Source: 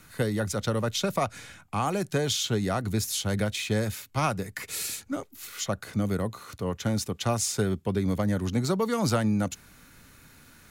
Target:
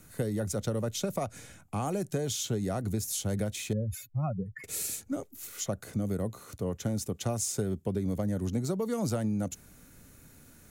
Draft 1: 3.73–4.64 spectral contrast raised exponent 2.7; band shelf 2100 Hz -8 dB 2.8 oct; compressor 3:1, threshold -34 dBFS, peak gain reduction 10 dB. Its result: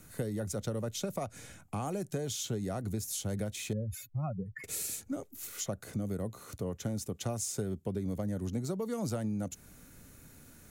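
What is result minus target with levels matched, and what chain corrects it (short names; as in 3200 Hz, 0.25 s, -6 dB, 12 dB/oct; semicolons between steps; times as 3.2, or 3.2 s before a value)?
compressor: peak gain reduction +4 dB
3.73–4.64 spectral contrast raised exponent 2.7; band shelf 2100 Hz -8 dB 2.8 oct; compressor 3:1, threshold -28 dBFS, peak gain reduction 6 dB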